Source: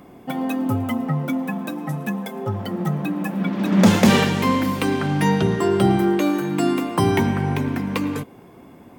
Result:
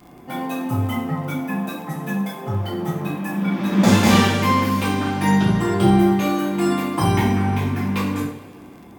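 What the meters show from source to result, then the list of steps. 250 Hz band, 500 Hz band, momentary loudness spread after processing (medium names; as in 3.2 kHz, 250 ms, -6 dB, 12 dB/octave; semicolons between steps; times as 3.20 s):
+0.5 dB, -1.5 dB, 11 LU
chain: two-slope reverb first 0.47 s, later 2.4 s, from -20 dB, DRR -9 dB; crackle 34 per s -29 dBFS; trim -8 dB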